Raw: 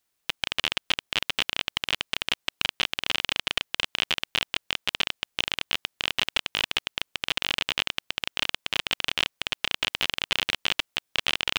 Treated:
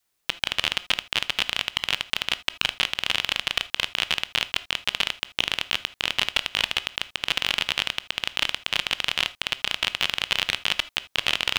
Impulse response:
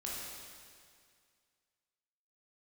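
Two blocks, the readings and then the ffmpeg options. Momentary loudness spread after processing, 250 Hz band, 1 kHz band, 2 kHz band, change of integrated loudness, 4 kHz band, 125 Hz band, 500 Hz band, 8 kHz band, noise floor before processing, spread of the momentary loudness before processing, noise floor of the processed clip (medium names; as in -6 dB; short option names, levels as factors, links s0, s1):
4 LU, -0.5 dB, +2.0 dB, +2.5 dB, +2.5 dB, +2.5 dB, +2.0 dB, +1.0 dB, +2.5 dB, -78 dBFS, 4 LU, -75 dBFS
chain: -filter_complex "[0:a]adynamicequalizer=threshold=0.002:dfrequency=320:dqfactor=1.2:tfrequency=320:tqfactor=1.2:attack=5:release=100:ratio=0.375:range=3:mode=cutabove:tftype=bell,asplit=2[s0][s1];[1:a]atrim=start_sample=2205,atrim=end_sample=3969[s2];[s1][s2]afir=irnorm=-1:irlink=0,volume=0.335[s3];[s0][s3]amix=inputs=2:normalize=0,volume=1.12"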